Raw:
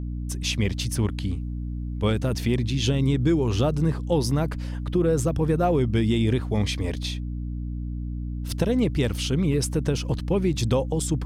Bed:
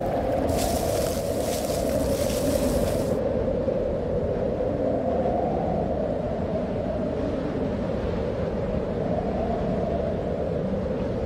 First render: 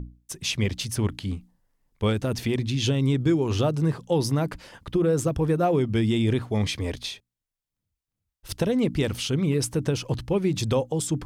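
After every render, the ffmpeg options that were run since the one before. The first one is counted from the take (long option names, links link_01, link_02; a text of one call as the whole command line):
ffmpeg -i in.wav -af "bandreject=frequency=60:width_type=h:width=6,bandreject=frequency=120:width_type=h:width=6,bandreject=frequency=180:width_type=h:width=6,bandreject=frequency=240:width_type=h:width=6,bandreject=frequency=300:width_type=h:width=6" out.wav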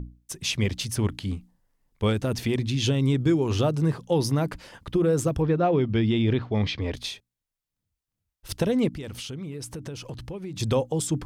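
ffmpeg -i in.wav -filter_complex "[0:a]asettb=1/sr,asplit=3[link_01][link_02][link_03];[link_01]atrim=end=3.954[link_04];[link_02]atrim=start=3.95:end=4.39,asetpts=PTS-STARTPTS,afade=type=in:duration=0.004:curve=qsin,afade=type=out:start_time=0.436:duration=0.004:curve=qsin,bandreject=frequency=7700:width=12[link_05];[link_03]atrim=start=4.386[link_06];[link_04][link_05]acrossfade=duration=0.004:curve1=hsin:curve2=qsin[link_07];[link_07][link_06]acrossfade=duration=0.004:curve1=qsin:curve2=hsin,asettb=1/sr,asplit=3[link_08][link_09][link_10];[link_08]atrim=end=5.424[link_11];[link_09]atrim=start=5.42:end=6.94,asetpts=PTS-STARTPTS,afade=type=in:duration=0.004:curve=qsin,afade=type=out:start_time=1.516:duration=0.004:curve=qsin,lowpass=frequency=4700:width=0.5412,lowpass=frequency=4700:width=1.3066[link_12];[link_10]atrim=start=6.936[link_13];[link_11][link_12]acrossfade=duration=0.004:curve1=hsin:curve2=qsin[link_14];[link_14][link_13]acrossfade=duration=0.004:curve1=qsin:curve2=hsin,asplit=3[link_15][link_16][link_17];[link_15]afade=type=out:start_time=8.88:duration=0.02[link_18];[link_16]acompressor=threshold=-34dB:ratio=4:attack=3.2:release=140:knee=1:detection=peak,afade=type=in:start_time=8.88:duration=0.02,afade=type=out:start_time=10.59:duration=0.02[link_19];[link_17]afade=type=in:start_time=10.59:duration=0.02[link_20];[link_18][link_19][link_20]amix=inputs=3:normalize=0" out.wav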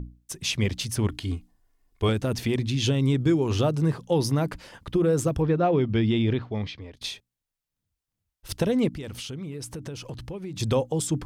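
ffmpeg -i in.wav -filter_complex "[0:a]asettb=1/sr,asplit=3[link_01][link_02][link_03];[link_01]atrim=end=1.094[link_04];[link_02]atrim=start=1.09:end=2.09,asetpts=PTS-STARTPTS,afade=type=in:duration=0.004:curve=qsin,afade=type=out:start_time=0.996:duration=0.004:curve=qsin,aecho=1:1:2.8:0.63,atrim=end_sample=44100[link_05];[link_03]atrim=start=2.086[link_06];[link_04][link_05]acrossfade=duration=0.004:curve1=hsin:curve2=qsin[link_07];[link_07][link_06]acrossfade=duration=0.004:curve1=qsin:curve2=hsin,asplit=2[link_08][link_09];[link_08]atrim=end=7.01,asetpts=PTS-STARTPTS,afade=type=out:start_time=6.18:duration=0.83:silence=0.0630957[link_10];[link_09]atrim=start=7.01,asetpts=PTS-STARTPTS,afade=type=in:duration=0.004:curve=hsin:silence=0.0630957[link_11];[link_10][link_11]concat=n=2:v=0:a=1" out.wav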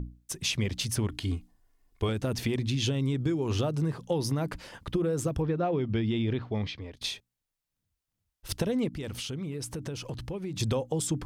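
ffmpeg -i in.wav -af "acompressor=threshold=-25dB:ratio=6" out.wav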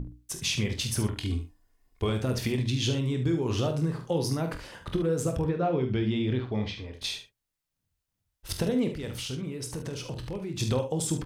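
ffmpeg -i in.wav -filter_complex "[0:a]asplit=2[link_01][link_02];[link_02]adelay=47,volume=-9.5dB[link_03];[link_01][link_03]amix=inputs=2:normalize=0,aecho=1:1:24|73:0.316|0.316" out.wav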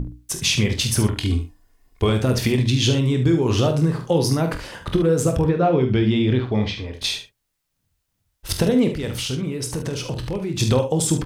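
ffmpeg -i in.wav -af "volume=9dB" out.wav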